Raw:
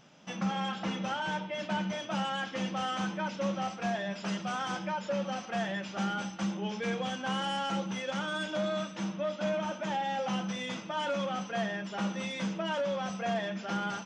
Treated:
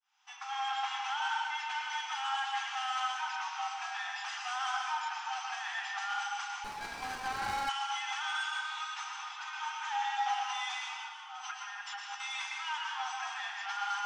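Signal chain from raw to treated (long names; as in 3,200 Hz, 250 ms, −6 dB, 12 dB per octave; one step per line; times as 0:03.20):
fade in at the beginning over 0.62 s
brickwall limiter −26 dBFS, peak gain reduction 4.5 dB
0:10.82–0:12.20: compressor whose output falls as the input rises −40 dBFS, ratio −0.5
linear-phase brick-wall high-pass 730 Hz
convolution reverb RT60 1.7 s, pre-delay 105 ms, DRR −1 dB
0:06.64–0:07.69: windowed peak hold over 9 samples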